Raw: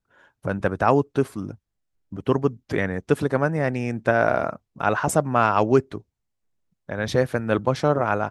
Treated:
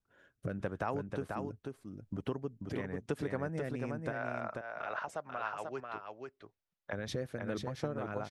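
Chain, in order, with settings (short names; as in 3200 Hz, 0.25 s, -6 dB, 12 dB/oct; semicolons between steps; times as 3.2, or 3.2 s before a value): 4.12–6.93 three-band isolator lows -17 dB, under 560 Hz, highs -16 dB, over 5200 Hz; compressor 4:1, threshold -31 dBFS, peak gain reduction 15.5 dB; rotary speaker horn 0.85 Hz, later 5.5 Hz, at 4.5; echo 0.489 s -4.5 dB; gain -3 dB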